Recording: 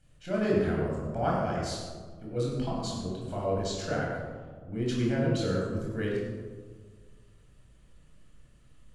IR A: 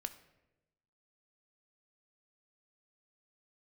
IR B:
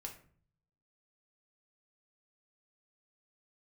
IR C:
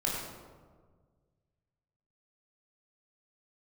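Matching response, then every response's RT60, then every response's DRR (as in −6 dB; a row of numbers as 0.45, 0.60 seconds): C; 1.0, 0.50, 1.6 seconds; 8.5, 1.0, −4.5 decibels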